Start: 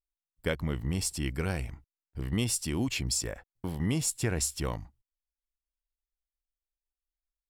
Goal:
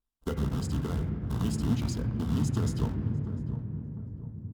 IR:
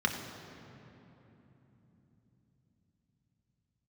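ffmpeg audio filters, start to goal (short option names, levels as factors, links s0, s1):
-filter_complex "[0:a]atempo=1.8,acompressor=threshold=0.00708:ratio=2,lowshelf=f=410:g=11,acrusher=bits=3:mode=log:mix=0:aa=0.000001,asplit=2[s0][s1];[s1]adelay=643,lowpass=f=850:p=1,volume=0.316,asplit=2[s2][s3];[s3]adelay=643,lowpass=f=850:p=1,volume=0.49,asplit=2[s4][s5];[s5]adelay=643,lowpass=f=850:p=1,volume=0.49,asplit=2[s6][s7];[s7]adelay=643,lowpass=f=850:p=1,volume=0.49,asplit=2[s8][s9];[s9]adelay=643,lowpass=f=850:p=1,volume=0.49[s10];[s0][s2][s4][s6][s8][s10]amix=inputs=6:normalize=0,asplit=2[s11][s12];[1:a]atrim=start_sample=2205,lowpass=2700[s13];[s12][s13]afir=irnorm=-1:irlink=0,volume=0.447[s14];[s11][s14]amix=inputs=2:normalize=0,asetrate=40517,aresample=44100,adynamicequalizer=threshold=0.00141:dfrequency=6700:dqfactor=0.7:tfrequency=6700:tqfactor=0.7:attack=5:release=100:ratio=0.375:range=2.5:mode=cutabove:tftype=highshelf,volume=0.794"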